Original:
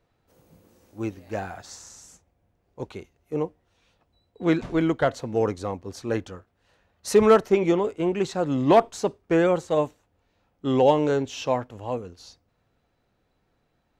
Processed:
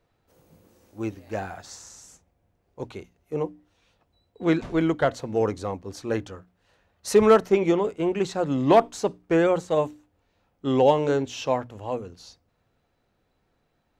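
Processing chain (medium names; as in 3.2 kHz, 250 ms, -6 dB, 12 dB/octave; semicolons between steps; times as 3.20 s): hum notches 60/120/180/240/300 Hz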